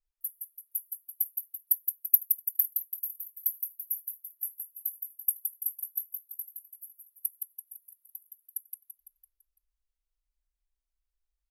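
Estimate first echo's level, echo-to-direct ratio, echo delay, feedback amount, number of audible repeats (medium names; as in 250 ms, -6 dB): -5.5 dB, -4.5 dB, 168 ms, 49%, 5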